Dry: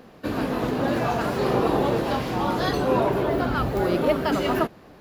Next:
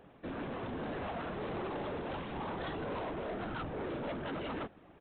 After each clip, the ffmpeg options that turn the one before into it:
ffmpeg -i in.wav -af "afftfilt=real='hypot(re,im)*cos(2*PI*random(0))':imag='hypot(re,im)*sin(2*PI*random(1))':win_size=512:overlap=0.75,aresample=8000,asoftclip=type=tanh:threshold=-31.5dB,aresample=44100,volume=-4dB" out.wav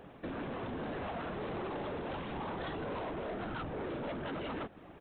ffmpeg -i in.wav -af "acompressor=threshold=-45dB:ratio=3,volume=5.5dB" out.wav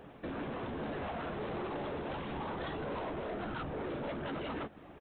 ffmpeg -i in.wav -filter_complex "[0:a]asplit=2[link_01][link_02];[link_02]adelay=14,volume=-11.5dB[link_03];[link_01][link_03]amix=inputs=2:normalize=0" out.wav

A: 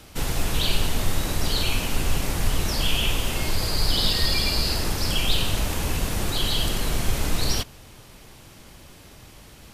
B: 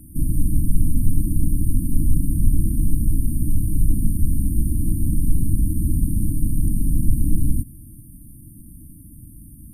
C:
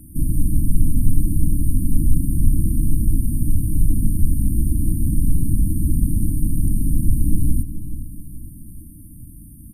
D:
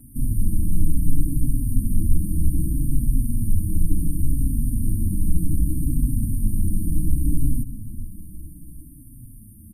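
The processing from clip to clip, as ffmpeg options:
ffmpeg -i in.wav -filter_complex "[0:a]afftfilt=real='re*(1-between(b*sr/4096,330,8600))':imag='im*(1-between(b*sr/4096,330,8600))':win_size=4096:overlap=0.75,acrossover=split=7400[link_01][link_02];[link_02]acompressor=threshold=-46dB:ratio=4:attack=1:release=60[link_03];[link_01][link_03]amix=inputs=2:normalize=0,volume=7dB" out.wav
ffmpeg -i in.wav -filter_complex "[0:a]asplit=2[link_01][link_02];[link_02]adelay=425,lowpass=frequency=2000:poles=1,volume=-12dB,asplit=2[link_03][link_04];[link_04]adelay=425,lowpass=frequency=2000:poles=1,volume=0.47,asplit=2[link_05][link_06];[link_06]adelay=425,lowpass=frequency=2000:poles=1,volume=0.47,asplit=2[link_07][link_08];[link_08]adelay=425,lowpass=frequency=2000:poles=1,volume=0.47,asplit=2[link_09][link_10];[link_10]adelay=425,lowpass=frequency=2000:poles=1,volume=0.47[link_11];[link_01][link_03][link_05][link_07][link_09][link_11]amix=inputs=6:normalize=0,volume=1dB" out.wav
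ffmpeg -i in.wav -filter_complex "[0:a]aeval=exprs='0.891*(cos(1*acos(clip(val(0)/0.891,-1,1)))-cos(1*PI/2))+0.0126*(cos(4*acos(clip(val(0)/0.891,-1,1)))-cos(4*PI/2))':channel_layout=same,asplit=2[link_01][link_02];[link_02]adelay=4.9,afreqshift=-0.66[link_03];[link_01][link_03]amix=inputs=2:normalize=1" out.wav

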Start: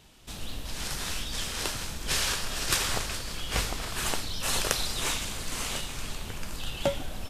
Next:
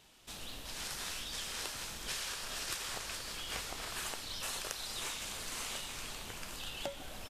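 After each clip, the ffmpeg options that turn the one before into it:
ffmpeg -i in.wav -af "lowshelf=frequency=260:gain=-10,acompressor=threshold=-33dB:ratio=6,aecho=1:1:778:0.224,volume=-4dB" out.wav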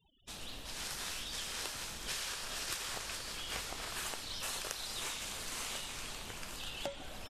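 ffmpeg -i in.wav -af "afftfilt=real='re*gte(hypot(re,im),0.00178)':imag='im*gte(hypot(re,im),0.00178)':win_size=1024:overlap=0.75" out.wav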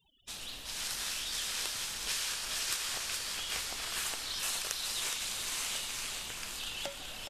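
ffmpeg -i in.wav -filter_complex "[0:a]tiltshelf=frequency=1300:gain=-4.5,asplit=2[link_01][link_02];[link_02]aecho=0:1:417:0.473[link_03];[link_01][link_03]amix=inputs=2:normalize=0,volume=1dB" out.wav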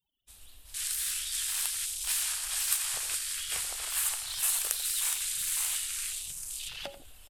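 ffmpeg -i in.wav -filter_complex "[0:a]aexciter=amount=4.7:drive=3.6:freq=8000,afwtdn=0.00891,asplit=2[link_01][link_02];[link_02]adelay=87.46,volume=-13dB,highshelf=frequency=4000:gain=-1.97[link_03];[link_01][link_03]amix=inputs=2:normalize=0" out.wav

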